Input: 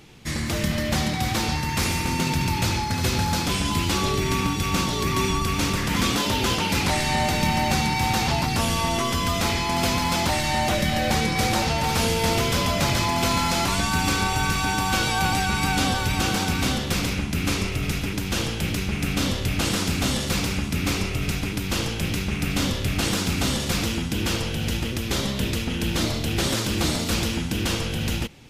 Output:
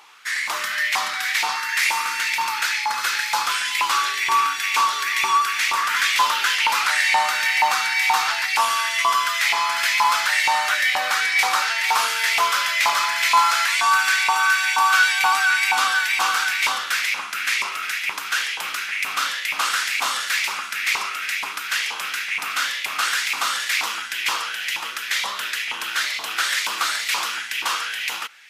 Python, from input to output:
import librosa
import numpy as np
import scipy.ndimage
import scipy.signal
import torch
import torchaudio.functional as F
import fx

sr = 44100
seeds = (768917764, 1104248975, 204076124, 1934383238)

y = fx.filter_lfo_highpass(x, sr, shape='saw_up', hz=2.1, low_hz=950.0, high_hz=2200.0, q=4.6)
y = y * librosa.db_to_amplitude(1.5)